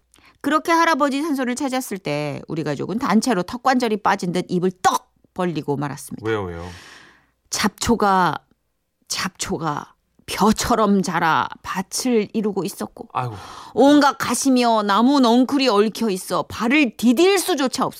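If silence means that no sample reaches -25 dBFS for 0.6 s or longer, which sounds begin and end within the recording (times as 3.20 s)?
7.53–8.37 s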